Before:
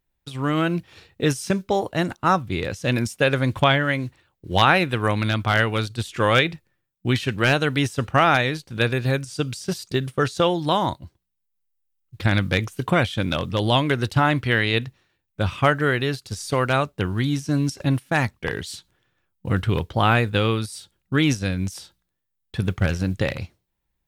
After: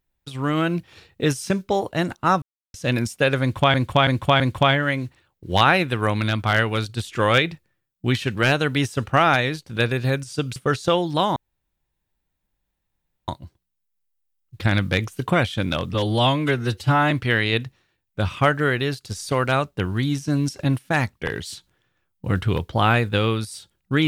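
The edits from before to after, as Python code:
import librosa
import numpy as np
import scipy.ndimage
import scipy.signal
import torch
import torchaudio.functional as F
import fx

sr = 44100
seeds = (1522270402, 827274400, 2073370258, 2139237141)

y = fx.edit(x, sr, fx.silence(start_s=2.42, length_s=0.32),
    fx.repeat(start_s=3.41, length_s=0.33, count=4),
    fx.cut(start_s=9.57, length_s=0.51),
    fx.insert_room_tone(at_s=10.88, length_s=1.92),
    fx.stretch_span(start_s=13.54, length_s=0.78, factor=1.5), tone=tone)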